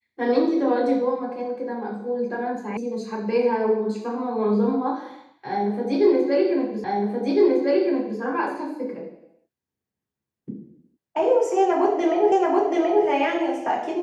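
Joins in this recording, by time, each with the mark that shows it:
2.77 s: sound stops dead
6.84 s: repeat of the last 1.36 s
12.32 s: repeat of the last 0.73 s

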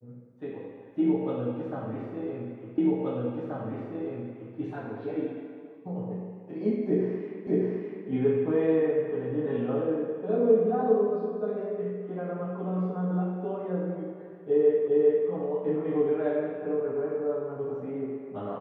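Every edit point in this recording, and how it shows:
2.78 s: repeat of the last 1.78 s
7.47 s: repeat of the last 0.61 s
14.88 s: repeat of the last 0.4 s

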